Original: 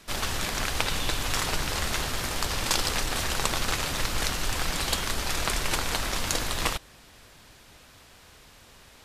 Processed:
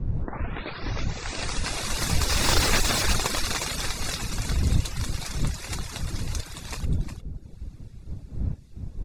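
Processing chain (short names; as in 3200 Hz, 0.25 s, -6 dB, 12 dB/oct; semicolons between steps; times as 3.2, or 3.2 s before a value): tape start at the beginning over 2.64 s; Doppler pass-by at 2.68, 29 m/s, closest 7.2 m; wind noise 94 Hz -40 dBFS; Bessel low-pass 9400 Hz, order 2; in parallel at +2.5 dB: compressor, threshold -38 dBFS, peak gain reduction 15 dB; on the sum: high shelf 3000 Hz +10.5 dB; notch 3100 Hz, Q 6.6; on a send: tapped delay 0.113/0.359 s -11/-9 dB; on the sum: reverb removal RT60 0.85 s; low shelf 480 Hz +4.5 dB; slew limiter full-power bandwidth 260 Hz; gain +3 dB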